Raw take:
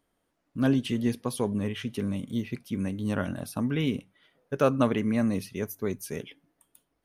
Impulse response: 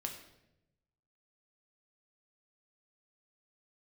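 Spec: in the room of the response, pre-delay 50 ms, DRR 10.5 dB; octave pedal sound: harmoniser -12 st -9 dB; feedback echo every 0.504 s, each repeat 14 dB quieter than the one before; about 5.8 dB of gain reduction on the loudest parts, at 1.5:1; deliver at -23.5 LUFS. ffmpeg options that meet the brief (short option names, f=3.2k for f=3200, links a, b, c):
-filter_complex "[0:a]acompressor=threshold=-34dB:ratio=1.5,aecho=1:1:504|1008:0.2|0.0399,asplit=2[a][b];[1:a]atrim=start_sample=2205,adelay=50[c];[b][c]afir=irnorm=-1:irlink=0,volume=-10dB[d];[a][d]amix=inputs=2:normalize=0,asplit=2[e][f];[f]asetrate=22050,aresample=44100,atempo=2,volume=-9dB[g];[e][g]amix=inputs=2:normalize=0,volume=9dB"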